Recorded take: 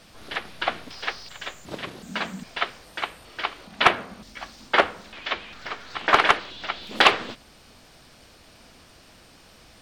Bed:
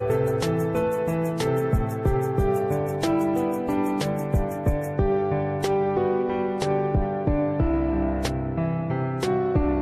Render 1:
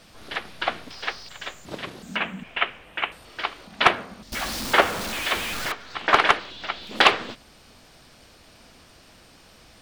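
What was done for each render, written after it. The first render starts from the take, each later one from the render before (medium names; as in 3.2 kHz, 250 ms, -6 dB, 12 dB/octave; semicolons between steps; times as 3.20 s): 2.16–3.12 s: resonant high shelf 3.6 kHz -9 dB, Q 3; 4.32–5.72 s: jump at every zero crossing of -25.5 dBFS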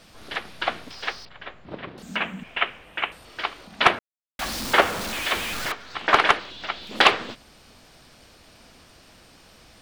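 1.25–1.98 s: distance through air 380 m; 3.99–4.39 s: mute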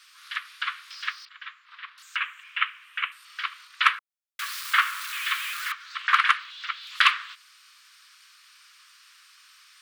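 dynamic bell 5.6 kHz, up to -6 dB, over -40 dBFS, Q 0.93; steep high-pass 1.1 kHz 72 dB/octave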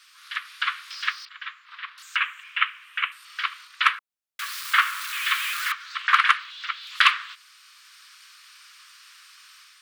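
level rider gain up to 4.5 dB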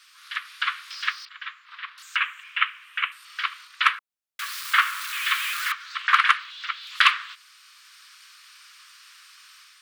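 no audible change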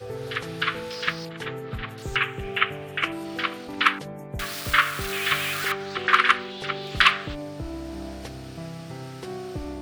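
add bed -11.5 dB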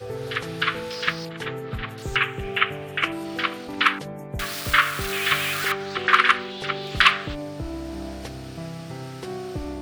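trim +2 dB; peak limiter -2 dBFS, peak gain reduction 2.5 dB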